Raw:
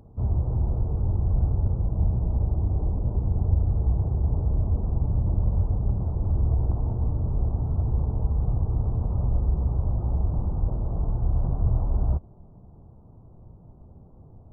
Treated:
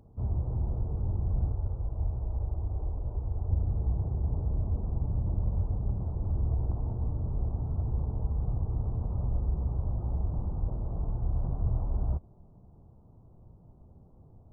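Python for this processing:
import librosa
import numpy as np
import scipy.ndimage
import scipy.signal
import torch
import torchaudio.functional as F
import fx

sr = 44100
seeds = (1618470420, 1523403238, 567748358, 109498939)

y = fx.peak_eq(x, sr, hz=190.0, db=-11.0, octaves=1.3, at=(1.52, 3.5))
y = y * 10.0 ** (-6.0 / 20.0)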